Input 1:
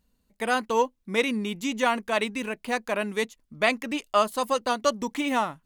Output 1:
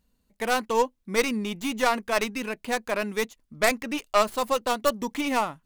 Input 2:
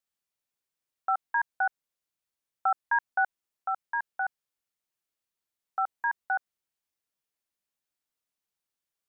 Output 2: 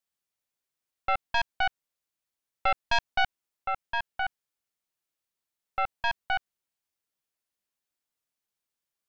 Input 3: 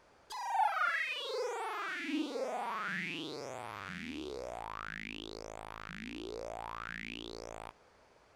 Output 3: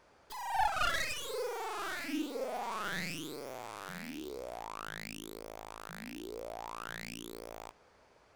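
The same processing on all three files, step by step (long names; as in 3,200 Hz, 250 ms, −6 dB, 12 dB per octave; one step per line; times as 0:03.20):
stylus tracing distortion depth 0.2 ms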